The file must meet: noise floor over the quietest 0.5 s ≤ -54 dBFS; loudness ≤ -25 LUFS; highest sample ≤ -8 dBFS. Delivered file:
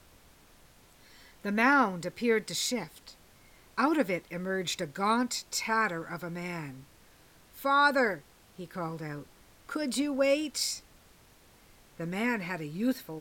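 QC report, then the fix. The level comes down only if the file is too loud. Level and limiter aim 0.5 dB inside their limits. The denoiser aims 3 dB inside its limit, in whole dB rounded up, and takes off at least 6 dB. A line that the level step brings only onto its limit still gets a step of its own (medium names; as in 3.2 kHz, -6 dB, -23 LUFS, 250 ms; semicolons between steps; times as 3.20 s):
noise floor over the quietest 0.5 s -59 dBFS: pass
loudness -30.0 LUFS: pass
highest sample -11.5 dBFS: pass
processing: none needed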